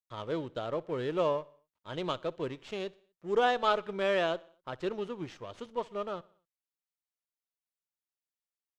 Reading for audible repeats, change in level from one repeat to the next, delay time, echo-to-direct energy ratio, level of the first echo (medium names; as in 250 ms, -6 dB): 3, -5.0 dB, 61 ms, -22.0 dB, -23.5 dB